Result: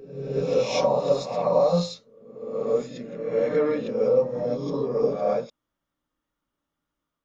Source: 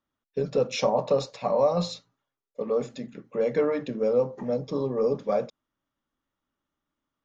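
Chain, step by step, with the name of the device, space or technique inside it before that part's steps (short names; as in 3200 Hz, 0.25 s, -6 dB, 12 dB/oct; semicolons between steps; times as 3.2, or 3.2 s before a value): reverse reverb (reverse; reverb RT60 0.95 s, pre-delay 7 ms, DRR -2.5 dB; reverse); gain -3 dB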